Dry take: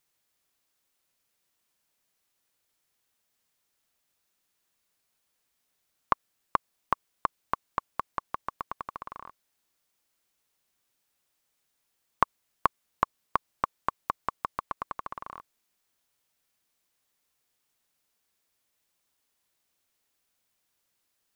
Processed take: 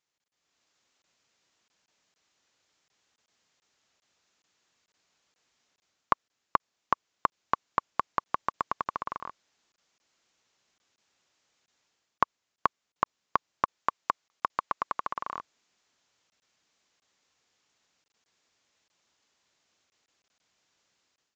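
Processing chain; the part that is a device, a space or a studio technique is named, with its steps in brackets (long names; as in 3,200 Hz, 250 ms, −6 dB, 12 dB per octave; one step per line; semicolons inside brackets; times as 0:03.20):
call with lost packets (high-pass filter 100 Hz 6 dB per octave; downsampling to 16,000 Hz; automatic gain control gain up to 11.5 dB; dropped packets random)
0:13.78–0:15.35: low-shelf EQ 380 Hz −5.5 dB
level −4.5 dB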